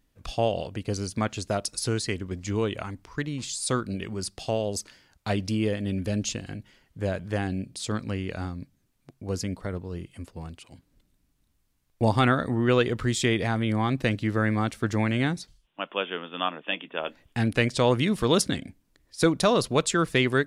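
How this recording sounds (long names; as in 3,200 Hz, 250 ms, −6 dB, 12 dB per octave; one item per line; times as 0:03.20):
background noise floor −70 dBFS
spectral slope −5.0 dB per octave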